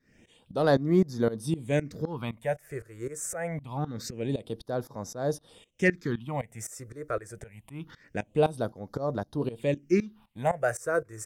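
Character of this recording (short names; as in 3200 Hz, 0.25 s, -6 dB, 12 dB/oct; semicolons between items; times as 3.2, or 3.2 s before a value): tremolo saw up 3.9 Hz, depth 90%; phasing stages 6, 0.25 Hz, lowest notch 220–2700 Hz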